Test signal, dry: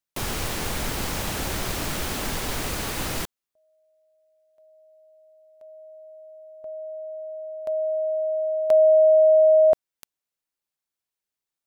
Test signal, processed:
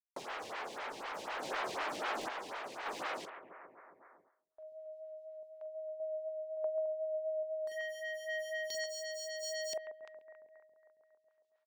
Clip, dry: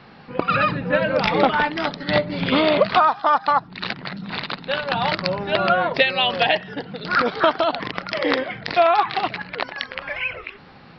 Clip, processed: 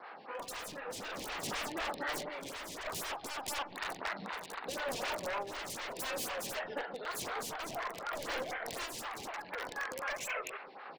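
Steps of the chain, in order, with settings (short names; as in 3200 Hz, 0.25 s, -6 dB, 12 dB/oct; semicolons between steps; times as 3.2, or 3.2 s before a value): HPF 630 Hz 12 dB/oct; high shelf 3200 Hz -9 dB; doubler 43 ms -11.5 dB; soft clip -11.5 dBFS; air absorption 100 m; wavefolder -30 dBFS; gate with hold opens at -60 dBFS, range -34 dB; compressor 10:1, threshold -41 dBFS; on a send: analogue delay 0.137 s, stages 2048, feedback 54%, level -10 dB; on the sum: random-step tremolo; reverse; upward compressor, threshold -55 dBFS; reverse; photocell phaser 4 Hz; gain +9 dB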